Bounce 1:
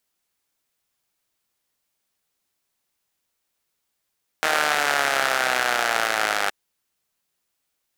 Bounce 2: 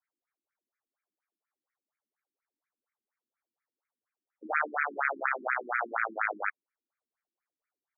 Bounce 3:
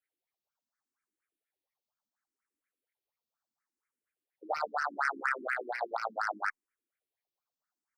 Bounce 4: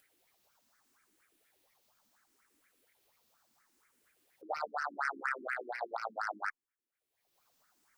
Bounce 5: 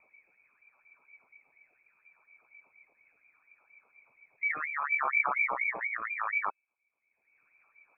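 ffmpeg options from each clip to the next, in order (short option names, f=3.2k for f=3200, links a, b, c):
-af "afftfilt=real='re*between(b*sr/1024,250*pow(1800/250,0.5+0.5*sin(2*PI*4.2*pts/sr))/1.41,250*pow(1800/250,0.5+0.5*sin(2*PI*4.2*pts/sr))*1.41)':imag='im*between(b*sr/1024,250*pow(1800/250,0.5+0.5*sin(2*PI*4.2*pts/sr))/1.41,250*pow(1800/250,0.5+0.5*sin(2*PI*4.2*pts/sr))*1.41)':win_size=1024:overlap=0.75,volume=-3dB"
-filter_complex "[0:a]acrossover=split=1100[a][b];[b]asoftclip=type=tanh:threshold=-25.5dB[c];[a][c]amix=inputs=2:normalize=0,asplit=2[d][e];[e]afreqshift=0.72[f];[d][f]amix=inputs=2:normalize=1,volume=2dB"
-af "acompressor=mode=upward:threshold=-50dB:ratio=2.5,volume=-4dB"
-af "lowshelf=f=440:t=q:w=3:g=13,lowpass=f=2.2k:t=q:w=0.5098,lowpass=f=2.2k:t=q:w=0.6013,lowpass=f=2.2k:t=q:w=0.9,lowpass=f=2.2k:t=q:w=2.563,afreqshift=-2600,volume=5.5dB"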